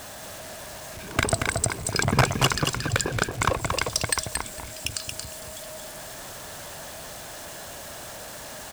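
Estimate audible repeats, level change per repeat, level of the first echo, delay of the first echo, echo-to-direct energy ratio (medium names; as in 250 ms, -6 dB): 2, -16.0 dB, -5.0 dB, 228 ms, -5.0 dB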